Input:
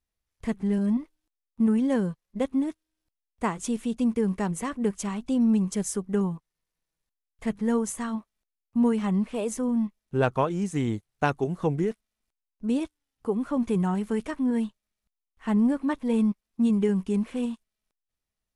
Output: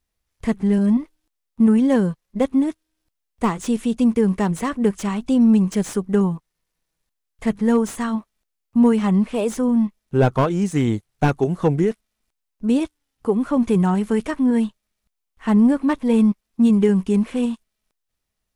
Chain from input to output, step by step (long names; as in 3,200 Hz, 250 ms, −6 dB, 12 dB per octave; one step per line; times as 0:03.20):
slew-rate limiting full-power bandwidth 68 Hz
level +7.5 dB